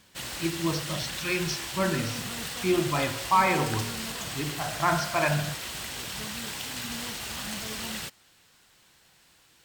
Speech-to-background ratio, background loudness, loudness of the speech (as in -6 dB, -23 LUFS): 5.0 dB, -33.5 LUFS, -28.5 LUFS